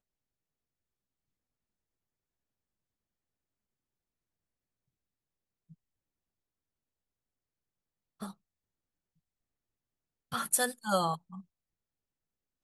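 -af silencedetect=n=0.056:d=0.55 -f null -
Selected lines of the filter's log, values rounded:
silence_start: 0.00
silence_end: 10.34 | silence_duration: 10.34
silence_start: 11.13
silence_end: 12.64 | silence_duration: 1.50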